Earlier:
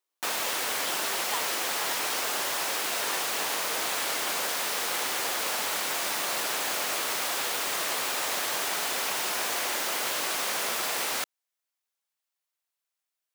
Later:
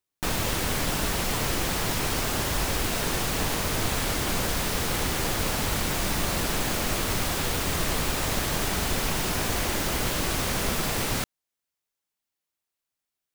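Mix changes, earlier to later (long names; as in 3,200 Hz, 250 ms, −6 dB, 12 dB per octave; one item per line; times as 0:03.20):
speech −7.0 dB
master: remove high-pass filter 580 Hz 12 dB per octave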